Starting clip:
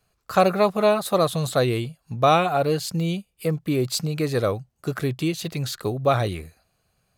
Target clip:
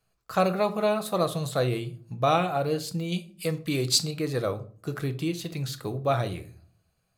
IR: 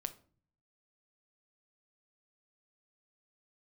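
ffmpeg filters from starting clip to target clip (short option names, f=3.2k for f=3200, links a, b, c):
-filter_complex "[0:a]asettb=1/sr,asplit=3[a][b][c];[a]atrim=end=3.124[d];[b]atrim=start=3.12:end=4.11,asetpts=PTS-STARTPTS,afade=t=in:d=0.004:c=qsin,afade=t=out:st=0.986:d=0.004:c=qsin,equalizer=f=5.3k:t=o:w=2.8:g=11[e];[c]atrim=start=4.106[f];[d][e]acrossfade=d=0.004:c1=hsin:c2=qsin[g];[g][f]acrossfade=d=0.004:c1=qsin:c2=hsin[h];[1:a]atrim=start_sample=2205[i];[h][i]afir=irnorm=-1:irlink=0,volume=-4dB"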